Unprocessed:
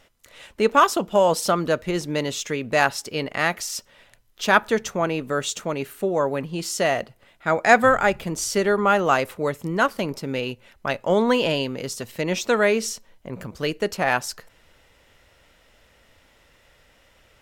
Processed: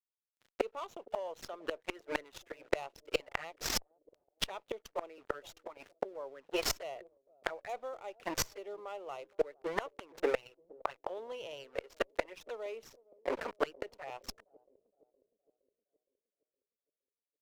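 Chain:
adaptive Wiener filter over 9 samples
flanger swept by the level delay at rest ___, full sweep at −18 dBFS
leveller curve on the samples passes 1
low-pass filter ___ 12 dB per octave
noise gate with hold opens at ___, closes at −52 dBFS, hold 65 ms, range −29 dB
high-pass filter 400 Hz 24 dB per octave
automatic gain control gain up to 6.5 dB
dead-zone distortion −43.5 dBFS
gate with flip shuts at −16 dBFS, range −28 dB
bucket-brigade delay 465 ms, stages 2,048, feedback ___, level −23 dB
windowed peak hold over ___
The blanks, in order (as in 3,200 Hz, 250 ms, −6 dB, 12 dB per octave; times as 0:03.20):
10.2 ms, 8,000 Hz, −48 dBFS, 51%, 3 samples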